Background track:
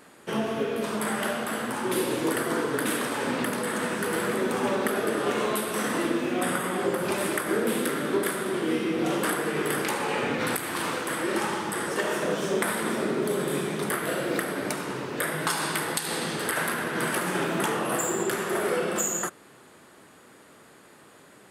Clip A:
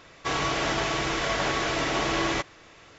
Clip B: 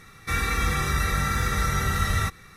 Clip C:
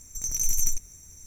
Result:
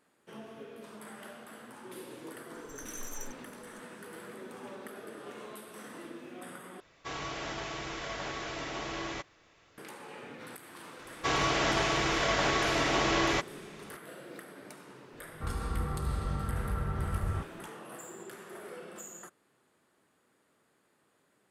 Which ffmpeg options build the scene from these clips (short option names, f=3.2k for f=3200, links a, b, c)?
-filter_complex "[1:a]asplit=2[a][b];[0:a]volume=-19dB[c];[2:a]lowpass=f=1.1k:w=0.5412,lowpass=f=1.1k:w=1.3066[d];[c]asplit=2[e][f];[e]atrim=end=6.804[g];[a]atrim=end=2.98,asetpts=PTS-STARTPTS,volume=-11.5dB[h];[f]atrim=start=9.776[i];[3:a]atrim=end=1.26,asetpts=PTS-STARTPTS,volume=-18dB,afade=t=in:d=0.004:c=hsin,afade=t=out:st=1.256:d=0.004:c=hsin,adelay=2540[j];[b]atrim=end=2.98,asetpts=PTS-STARTPTS,volume=-1.5dB,afade=t=in:d=0.004:c=hsin,afade=t=out:st=2.976:d=0.004:c=hsin,adelay=10990[k];[d]atrim=end=2.56,asetpts=PTS-STARTPTS,volume=-7dB,afade=t=in:d=0.004:c=hsin,afade=t=out:st=2.556:d=0.004:c=hsin,adelay=15130[l];[g][h]acrossfade=d=0.004:c1=hsin:c2=hsin[m];[m][i]acrossfade=d=0.004:c1=hsin:c2=hsin[n];[n][j][k][l]amix=inputs=4:normalize=0"